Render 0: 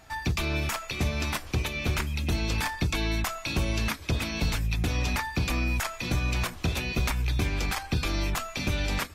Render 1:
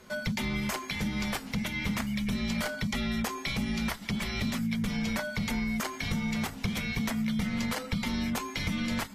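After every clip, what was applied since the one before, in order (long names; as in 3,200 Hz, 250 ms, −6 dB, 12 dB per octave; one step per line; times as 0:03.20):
downward compressor, threshold −27 dBFS, peak gain reduction 6 dB
frequency shifter −280 Hz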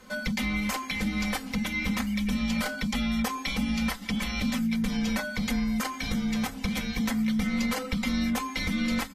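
comb filter 3.9 ms, depth 79%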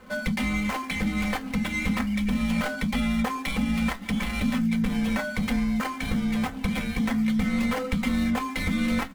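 running median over 9 samples
tuned comb filter 85 Hz, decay 0.17 s, mix 50%
level +6.5 dB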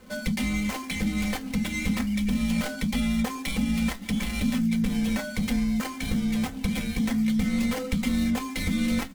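drawn EQ curve 350 Hz 0 dB, 1,200 Hz −7 dB, 5,800 Hz +4 dB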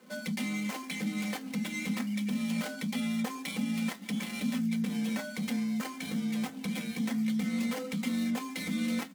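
high-pass filter 160 Hz 24 dB per octave
level −5.5 dB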